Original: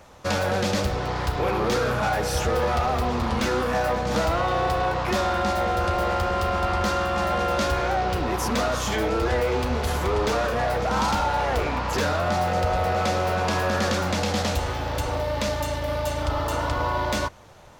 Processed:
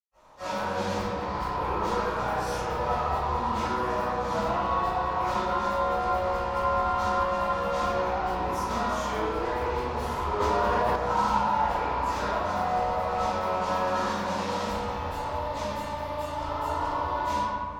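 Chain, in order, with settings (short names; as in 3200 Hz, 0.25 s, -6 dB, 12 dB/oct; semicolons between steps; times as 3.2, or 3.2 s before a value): bell 970 Hz +13.5 dB 0.35 oct; reverb RT60 2.0 s, pre-delay 0.115 s; 10.4–10.96 fast leveller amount 100%; gain -6.5 dB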